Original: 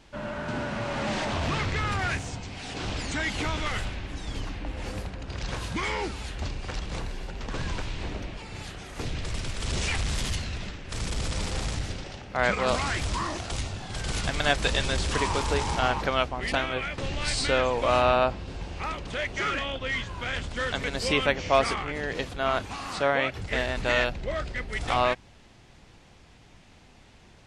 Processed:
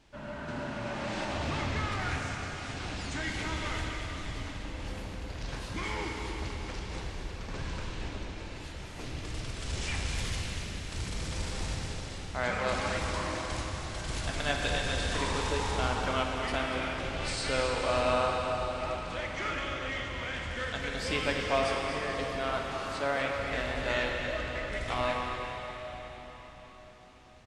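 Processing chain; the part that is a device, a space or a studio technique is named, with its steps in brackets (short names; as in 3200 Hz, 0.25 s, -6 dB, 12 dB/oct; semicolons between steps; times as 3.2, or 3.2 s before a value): cave (echo 0.242 s -9 dB; reverb RT60 4.9 s, pre-delay 3 ms, DRR 0 dB); gain -8 dB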